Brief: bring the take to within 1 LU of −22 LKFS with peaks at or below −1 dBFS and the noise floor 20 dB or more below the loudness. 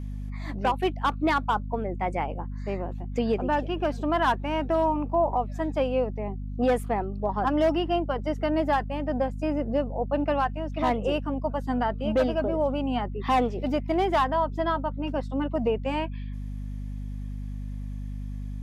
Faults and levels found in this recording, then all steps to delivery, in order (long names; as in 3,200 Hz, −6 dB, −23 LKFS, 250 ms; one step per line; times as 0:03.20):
mains hum 50 Hz; hum harmonics up to 250 Hz; level of the hum −31 dBFS; integrated loudness −27.5 LKFS; sample peak −14.5 dBFS; target loudness −22.0 LKFS
→ mains-hum notches 50/100/150/200/250 Hz
level +5.5 dB